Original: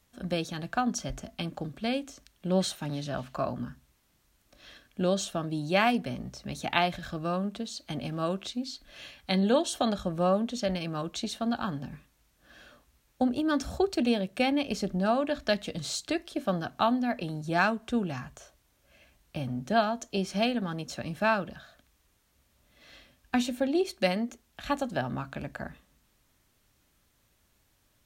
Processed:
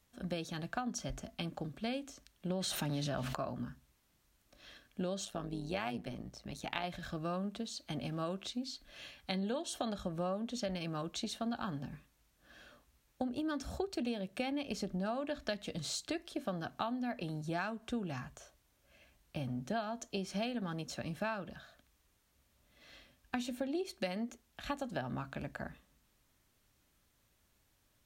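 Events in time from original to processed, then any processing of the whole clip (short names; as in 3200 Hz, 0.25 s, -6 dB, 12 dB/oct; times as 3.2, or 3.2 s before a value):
2.5–3.35 fast leveller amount 70%
5.25–6.84 AM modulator 110 Hz, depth 60%
whole clip: compressor 6:1, threshold -29 dBFS; gain -4.5 dB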